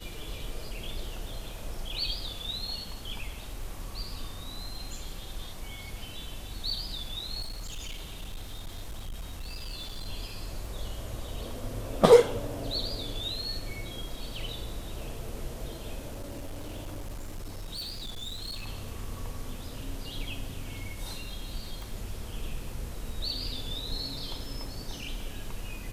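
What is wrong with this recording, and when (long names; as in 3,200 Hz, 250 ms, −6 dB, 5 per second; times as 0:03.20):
surface crackle 13 per second −41 dBFS
0:07.41–0:10.08: clipping −33.5 dBFS
0:16.11–0:18.68: clipping −34 dBFS
0:21.82: click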